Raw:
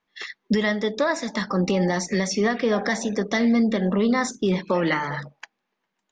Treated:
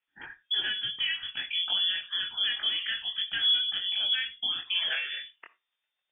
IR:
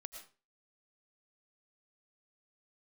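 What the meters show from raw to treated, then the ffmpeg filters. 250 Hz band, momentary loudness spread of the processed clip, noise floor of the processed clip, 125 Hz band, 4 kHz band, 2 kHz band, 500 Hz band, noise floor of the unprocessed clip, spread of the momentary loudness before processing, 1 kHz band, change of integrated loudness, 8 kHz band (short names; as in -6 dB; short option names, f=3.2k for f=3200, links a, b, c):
under -35 dB, 8 LU, -85 dBFS, under -30 dB, +10.5 dB, -5.5 dB, under -30 dB, -79 dBFS, 6 LU, -20.5 dB, -4.5 dB, under -40 dB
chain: -filter_complex "[0:a]flanger=delay=20:depth=4.3:speed=1.2,asplit=2[a][b];[1:a]atrim=start_sample=2205,asetrate=83790,aresample=44100[c];[b][c]afir=irnorm=-1:irlink=0,volume=4.5dB[d];[a][d]amix=inputs=2:normalize=0,lowpass=f=3.1k:t=q:w=0.5098,lowpass=f=3.1k:t=q:w=0.6013,lowpass=f=3.1k:t=q:w=0.9,lowpass=f=3.1k:t=q:w=2.563,afreqshift=-3600,volume=-8dB"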